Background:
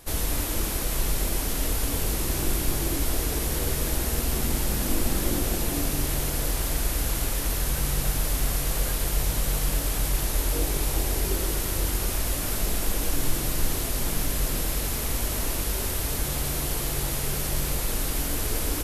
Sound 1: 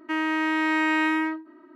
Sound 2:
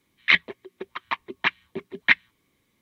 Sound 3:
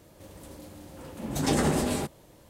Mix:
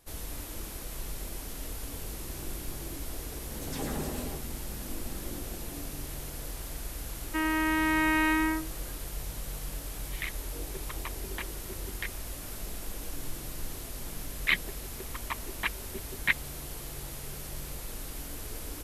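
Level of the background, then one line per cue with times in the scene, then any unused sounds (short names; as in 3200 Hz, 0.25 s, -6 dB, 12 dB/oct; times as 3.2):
background -12.5 dB
2.25 add 3 -11 dB + dispersion lows, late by 68 ms, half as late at 2100 Hz
7.25 add 1 -3 dB
9.94 add 2 -17.5 dB + three-band squash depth 100%
14.19 add 2 -8.5 dB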